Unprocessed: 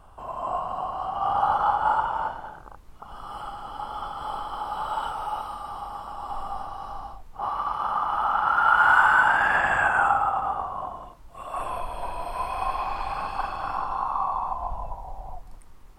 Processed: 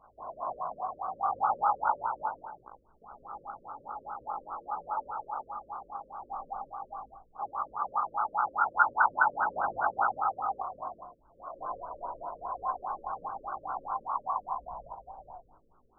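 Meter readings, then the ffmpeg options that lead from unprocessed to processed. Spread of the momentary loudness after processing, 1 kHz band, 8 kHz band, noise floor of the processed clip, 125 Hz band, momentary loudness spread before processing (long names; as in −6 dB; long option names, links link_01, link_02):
18 LU, −6.5 dB, can't be measured, −63 dBFS, below −15 dB, 18 LU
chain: -af "aemphasis=mode=production:type=riaa,flanger=delay=16.5:depth=2.8:speed=1.9,afftfilt=real='re*lt(b*sr/1024,560*pow(1600/560,0.5+0.5*sin(2*PI*4.9*pts/sr)))':imag='im*lt(b*sr/1024,560*pow(1600/560,0.5+0.5*sin(2*PI*4.9*pts/sr)))':win_size=1024:overlap=0.75"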